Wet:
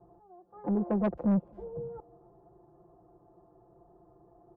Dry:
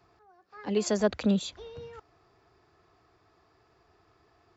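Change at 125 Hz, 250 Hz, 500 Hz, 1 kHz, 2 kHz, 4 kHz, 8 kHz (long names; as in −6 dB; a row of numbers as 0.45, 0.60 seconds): +1.0 dB, +0.5 dB, −5.0 dB, 0.0 dB, −11.0 dB, below −25 dB, can't be measured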